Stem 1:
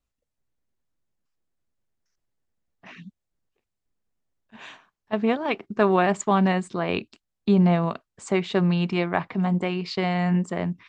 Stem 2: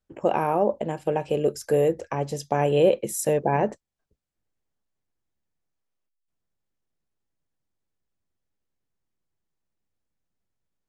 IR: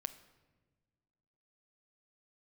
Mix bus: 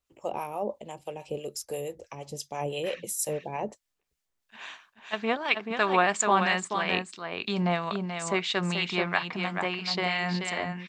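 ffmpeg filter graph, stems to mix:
-filter_complex "[0:a]volume=-1.5dB,asplit=2[link_01][link_02];[link_02]volume=-6dB[link_03];[1:a]lowshelf=frequency=160:gain=8,acrossover=split=530[link_04][link_05];[link_04]aeval=exprs='val(0)*(1-0.7/2+0.7/2*cos(2*PI*6*n/s))':channel_layout=same[link_06];[link_05]aeval=exprs='val(0)*(1-0.7/2-0.7/2*cos(2*PI*6*n/s))':channel_layout=same[link_07];[link_06][link_07]amix=inputs=2:normalize=0,equalizer=frequency=1600:width=2.4:gain=-14.5,volume=-3.5dB[link_08];[link_03]aecho=0:1:433:1[link_09];[link_01][link_08][link_09]amix=inputs=3:normalize=0,tiltshelf=frequency=690:gain=-8.5,acrossover=split=1400[link_10][link_11];[link_10]aeval=exprs='val(0)*(1-0.5/2+0.5/2*cos(2*PI*3*n/s))':channel_layout=same[link_12];[link_11]aeval=exprs='val(0)*(1-0.5/2-0.5/2*cos(2*PI*3*n/s))':channel_layout=same[link_13];[link_12][link_13]amix=inputs=2:normalize=0"

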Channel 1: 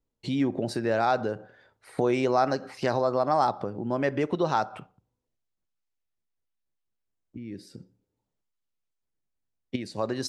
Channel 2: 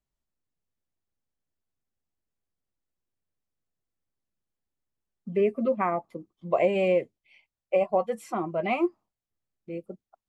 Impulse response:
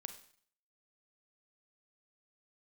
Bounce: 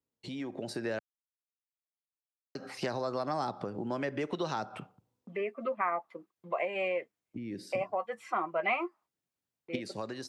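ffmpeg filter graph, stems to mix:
-filter_complex "[0:a]acrossover=split=420|1400[link_01][link_02][link_03];[link_01]acompressor=threshold=-38dB:ratio=4[link_04];[link_02]acompressor=threshold=-40dB:ratio=4[link_05];[link_03]acompressor=threshold=-42dB:ratio=4[link_06];[link_04][link_05][link_06]amix=inputs=3:normalize=0,volume=-5dB,asplit=3[link_07][link_08][link_09];[link_07]atrim=end=0.99,asetpts=PTS-STARTPTS,afade=type=out:start_time=0.986:duration=0.004:curve=hsin[link_10];[link_08]atrim=start=0.99:end=2.55,asetpts=PTS-STARTPTS,volume=0[link_11];[link_09]atrim=start=2.55,asetpts=PTS-STARTPTS,afade=type=in:duration=0.004:curve=hsin[link_12];[link_10][link_11][link_12]concat=n=3:v=0:a=1[link_13];[1:a]agate=range=-39dB:threshold=-49dB:ratio=16:detection=peak,alimiter=limit=-22dB:level=0:latency=1:release=500,bandpass=frequency=1600:width_type=q:width=1.3:csg=0,volume=2.5dB[link_14];[link_13][link_14]amix=inputs=2:normalize=0,highpass=110,dynaudnorm=framelen=190:gausssize=7:maxgain=6.5dB"

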